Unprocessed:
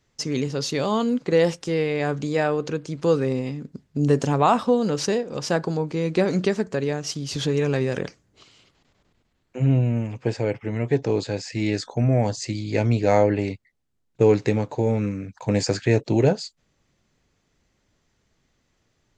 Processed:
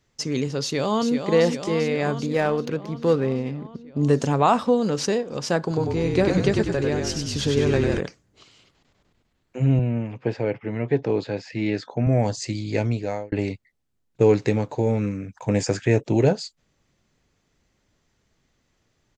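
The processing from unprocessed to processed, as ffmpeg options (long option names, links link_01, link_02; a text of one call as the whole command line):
ffmpeg -i in.wav -filter_complex "[0:a]asplit=2[link_01][link_02];[link_02]afade=type=in:start_time=0.62:duration=0.01,afade=type=out:start_time=1.32:duration=0.01,aecho=0:1:390|780|1170|1560|1950|2340|2730|3120|3510|3900|4290|4680:0.446684|0.335013|0.25126|0.188445|0.141333|0.106|0.0795001|0.0596251|0.0447188|0.0335391|0.0251543|0.0188657[link_03];[link_01][link_03]amix=inputs=2:normalize=0,asettb=1/sr,asplit=3[link_04][link_05][link_06];[link_04]atrim=end=2.264[link_07];[link_05]atrim=start=2.26:end=4.03,asetpts=PTS-STARTPTS,afade=type=in:duration=0.004:curve=qsin,afade=type=out:start_time=1.766:duration=0.004:curve=qsin,adynamicsmooth=sensitivity=5:basefreq=2500[link_08];[link_06]atrim=start=4.026[link_09];[link_07][link_08]acrossfade=duration=0.004:curve1=hsin:curve2=qsin[link_10];[link_10][link_09]acrossfade=duration=0.004:curve1=qsin:curve2=hsin,asettb=1/sr,asplit=3[link_11][link_12][link_13];[link_11]atrim=end=5.614[link_14];[link_12]atrim=start=5.61:end=8,asetpts=PTS-STARTPTS,afade=type=in:duration=0.004:curve=qsin,afade=type=out:start_time=2.386:duration=0.004:curve=qsin,asplit=8[link_15][link_16][link_17][link_18][link_19][link_20][link_21][link_22];[link_16]adelay=97,afreqshift=-40,volume=-3.5dB[link_23];[link_17]adelay=194,afreqshift=-80,volume=-9.3dB[link_24];[link_18]adelay=291,afreqshift=-120,volume=-15.2dB[link_25];[link_19]adelay=388,afreqshift=-160,volume=-21dB[link_26];[link_20]adelay=485,afreqshift=-200,volume=-26.9dB[link_27];[link_21]adelay=582,afreqshift=-240,volume=-32.7dB[link_28];[link_22]adelay=679,afreqshift=-280,volume=-38.6dB[link_29];[link_15][link_23][link_24][link_25][link_26][link_27][link_28][link_29]amix=inputs=8:normalize=0,atrim=end_sample=105399[link_30];[link_13]atrim=start=7.996[link_31];[link_14][link_30]acrossfade=duration=0.004:curve1=hsin:curve2=qsin[link_32];[link_32][link_31]acrossfade=duration=0.004:curve1=qsin:curve2=hsin,asettb=1/sr,asplit=3[link_33][link_34][link_35];[link_33]atrim=end=9.794[link_36];[link_34]atrim=start=9.79:end=12.07,asetpts=PTS-STARTPTS,afade=type=in:duration=0.004:curve=qsin,afade=type=out:start_time=2.276:duration=0.004:curve=qsin,highpass=110,lowpass=3400[link_37];[link_35]atrim=start=12.066[link_38];[link_36][link_37]acrossfade=duration=0.004:curve1=hsin:curve2=qsin[link_39];[link_39][link_38]acrossfade=duration=0.004:curve1=qsin:curve2=hsin,asettb=1/sr,asplit=3[link_40][link_41][link_42];[link_40]atrim=end=15.174[link_43];[link_41]atrim=start=15.17:end=16.15,asetpts=PTS-STARTPTS,afade=type=in:duration=0.004:curve=qsin,afade=type=out:start_time=0.976:duration=0.004:curve=qsin,equalizer=frequency=4300:width_type=o:width=0.27:gain=-10.5[link_44];[link_42]atrim=start=16.146[link_45];[link_43][link_44]acrossfade=duration=0.004:curve1=hsin:curve2=qsin[link_46];[link_46][link_45]acrossfade=duration=0.004:curve1=qsin:curve2=hsin,asplit=2[link_47][link_48];[link_47]atrim=end=13.32,asetpts=PTS-STARTPTS,afade=type=out:start_time=12.7:duration=0.62[link_49];[link_48]atrim=start=13.32,asetpts=PTS-STARTPTS,afade=type=in:duration=0.004:curve=hsin[link_50];[link_49][link_50]concat=n=2:v=0:a=1" out.wav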